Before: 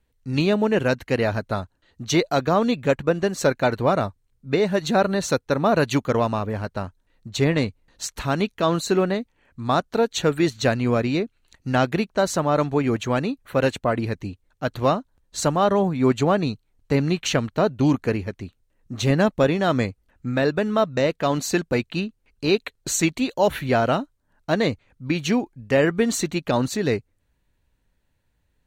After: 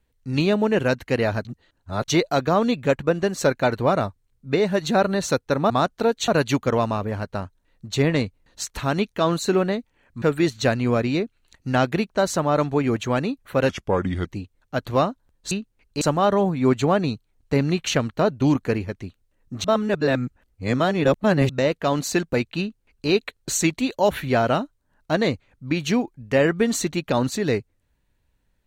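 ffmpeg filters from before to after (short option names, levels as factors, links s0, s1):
-filter_complex "[0:a]asplit=12[s0][s1][s2][s3][s4][s5][s6][s7][s8][s9][s10][s11];[s0]atrim=end=1.452[s12];[s1]atrim=start=1.448:end=2.082,asetpts=PTS-STARTPTS,areverse[s13];[s2]atrim=start=2.078:end=5.702[s14];[s3]atrim=start=9.638:end=10.222[s15];[s4]atrim=start=5.698:end=9.642[s16];[s5]atrim=start=10.218:end=13.694[s17];[s6]atrim=start=13.69:end=14.14,asetpts=PTS-STARTPTS,asetrate=35280,aresample=44100,atrim=end_sample=24806,asetpts=PTS-STARTPTS[s18];[s7]atrim=start=14.136:end=15.402[s19];[s8]atrim=start=21.978:end=22.482[s20];[s9]atrim=start=15.398:end=19.032[s21];[s10]atrim=start=19.028:end=20.882,asetpts=PTS-STARTPTS,areverse[s22];[s11]atrim=start=20.878[s23];[s12][s13]acrossfade=d=0.004:c1=hsin:c2=hsin[s24];[s24][s14]acrossfade=d=0.004:c1=hsin:c2=hsin[s25];[s25][s15]acrossfade=d=0.004:c1=hsin:c2=hsin[s26];[s26][s16]acrossfade=d=0.004:c1=hsin:c2=hsin[s27];[s27][s17]acrossfade=d=0.004:c1=hsin:c2=hsin[s28];[s28][s18]acrossfade=d=0.004:c1=hsin:c2=hsin[s29];[s29][s19]acrossfade=d=0.004:c1=hsin:c2=hsin[s30];[s30][s20]acrossfade=d=0.004:c1=hsin:c2=hsin[s31];[s31][s21]acrossfade=d=0.004:c1=hsin:c2=hsin[s32];[s32][s22]acrossfade=d=0.004:c1=hsin:c2=hsin[s33];[s33][s23]acrossfade=d=0.004:c1=hsin:c2=hsin"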